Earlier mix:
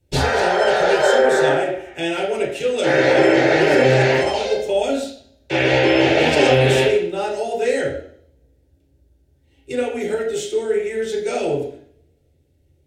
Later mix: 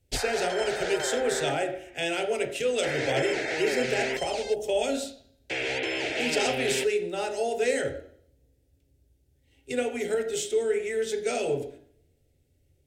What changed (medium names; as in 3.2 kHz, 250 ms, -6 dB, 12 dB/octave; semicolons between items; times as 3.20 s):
speech: send -9.5 dB; background: send off